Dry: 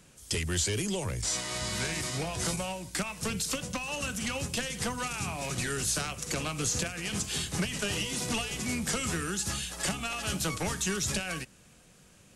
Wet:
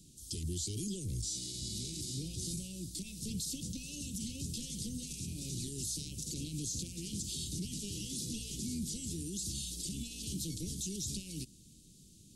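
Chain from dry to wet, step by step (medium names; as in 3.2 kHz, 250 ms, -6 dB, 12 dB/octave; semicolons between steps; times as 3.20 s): peak limiter -29.5 dBFS, peak gain reduction 11.5 dB; elliptic band-stop 330–3800 Hz, stop band 80 dB; trim +1 dB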